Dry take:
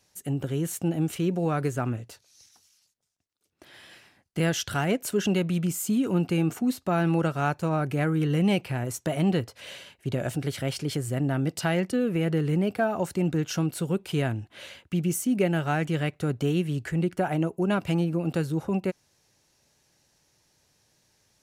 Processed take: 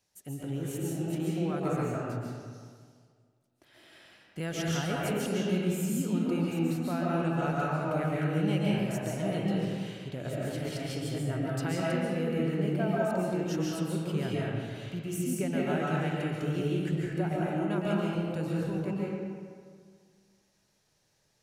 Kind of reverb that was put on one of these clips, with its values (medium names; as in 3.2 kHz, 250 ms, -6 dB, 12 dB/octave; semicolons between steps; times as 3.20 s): algorithmic reverb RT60 1.9 s, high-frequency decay 0.6×, pre-delay 100 ms, DRR -5.5 dB; trim -10.5 dB